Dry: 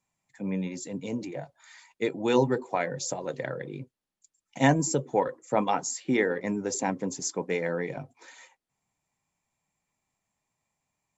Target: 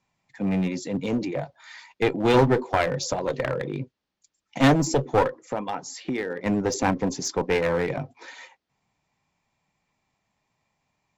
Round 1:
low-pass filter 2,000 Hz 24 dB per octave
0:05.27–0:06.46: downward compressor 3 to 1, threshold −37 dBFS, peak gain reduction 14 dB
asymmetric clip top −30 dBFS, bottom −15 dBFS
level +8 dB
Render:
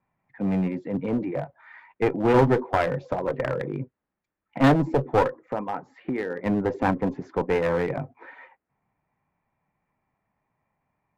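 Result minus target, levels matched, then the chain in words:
4,000 Hz band −8.5 dB
low-pass filter 5,600 Hz 24 dB per octave
0:05.27–0:06.46: downward compressor 3 to 1, threshold −37 dBFS, peak gain reduction 14 dB
asymmetric clip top −30 dBFS, bottom −15 dBFS
level +8 dB

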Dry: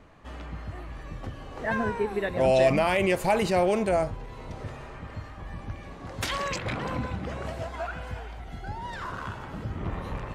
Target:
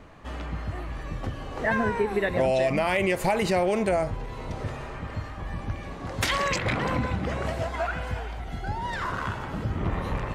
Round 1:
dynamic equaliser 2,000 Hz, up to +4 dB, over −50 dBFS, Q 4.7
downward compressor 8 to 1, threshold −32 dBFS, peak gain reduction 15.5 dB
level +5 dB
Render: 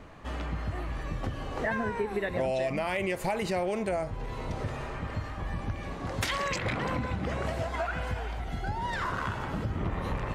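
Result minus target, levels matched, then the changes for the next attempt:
downward compressor: peak gain reduction +6 dB
change: downward compressor 8 to 1, threshold −25 dBFS, peak gain reduction 9.5 dB

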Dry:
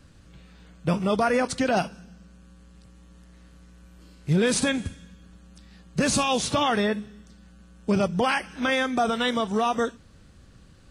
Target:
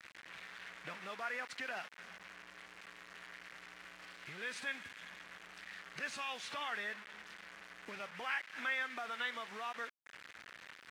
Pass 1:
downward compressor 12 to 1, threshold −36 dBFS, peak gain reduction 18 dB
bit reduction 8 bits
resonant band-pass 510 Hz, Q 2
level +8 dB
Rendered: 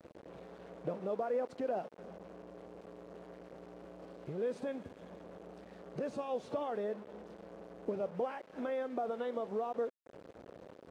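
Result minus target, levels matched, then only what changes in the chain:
2,000 Hz band −19.5 dB
change: resonant band-pass 1,900 Hz, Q 2

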